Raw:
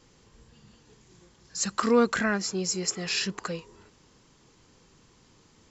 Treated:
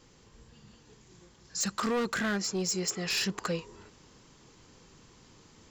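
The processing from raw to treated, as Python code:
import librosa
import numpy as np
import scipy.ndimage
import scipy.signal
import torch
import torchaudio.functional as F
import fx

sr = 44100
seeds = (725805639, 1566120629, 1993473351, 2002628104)

y = np.clip(x, -10.0 ** (-25.0 / 20.0), 10.0 ** (-25.0 / 20.0))
y = fx.rider(y, sr, range_db=10, speed_s=0.5)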